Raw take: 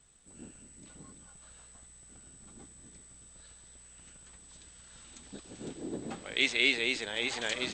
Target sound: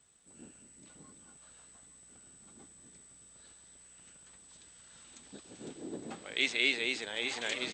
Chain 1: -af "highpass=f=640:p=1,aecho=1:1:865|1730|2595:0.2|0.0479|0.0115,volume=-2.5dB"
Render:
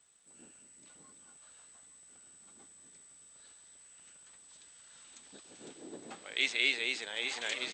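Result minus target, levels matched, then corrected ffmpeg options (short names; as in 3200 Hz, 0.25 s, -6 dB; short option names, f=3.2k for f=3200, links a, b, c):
125 Hz band -9.5 dB
-af "highpass=f=160:p=1,aecho=1:1:865|1730|2595:0.2|0.0479|0.0115,volume=-2.5dB"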